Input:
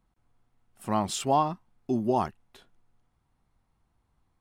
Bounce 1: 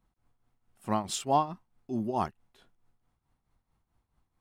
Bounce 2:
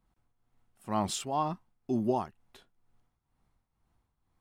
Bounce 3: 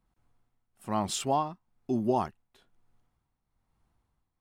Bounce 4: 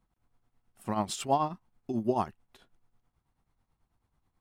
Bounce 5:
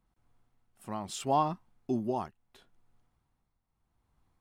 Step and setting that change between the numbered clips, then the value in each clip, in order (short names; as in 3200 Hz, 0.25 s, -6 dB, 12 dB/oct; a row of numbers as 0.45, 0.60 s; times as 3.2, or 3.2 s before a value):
tremolo, rate: 4.6, 2.1, 1.1, 9.2, 0.76 Hz